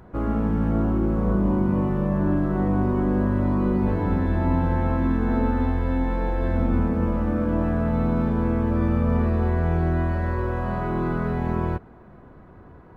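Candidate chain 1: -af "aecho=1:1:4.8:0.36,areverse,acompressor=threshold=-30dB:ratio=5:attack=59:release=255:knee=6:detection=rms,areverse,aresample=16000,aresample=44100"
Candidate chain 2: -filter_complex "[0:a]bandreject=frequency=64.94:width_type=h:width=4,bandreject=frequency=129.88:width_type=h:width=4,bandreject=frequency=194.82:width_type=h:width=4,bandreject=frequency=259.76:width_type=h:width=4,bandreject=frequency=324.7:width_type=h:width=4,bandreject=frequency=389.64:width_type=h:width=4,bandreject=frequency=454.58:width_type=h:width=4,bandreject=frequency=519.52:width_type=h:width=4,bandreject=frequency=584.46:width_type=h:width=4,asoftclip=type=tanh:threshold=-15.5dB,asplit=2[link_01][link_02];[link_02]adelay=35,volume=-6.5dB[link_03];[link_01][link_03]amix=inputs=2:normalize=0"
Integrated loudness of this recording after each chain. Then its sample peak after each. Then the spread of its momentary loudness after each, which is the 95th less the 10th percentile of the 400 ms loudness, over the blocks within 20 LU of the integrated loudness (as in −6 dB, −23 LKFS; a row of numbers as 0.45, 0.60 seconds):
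−32.0, −24.5 LKFS; −19.5, −14.0 dBFS; 3, 4 LU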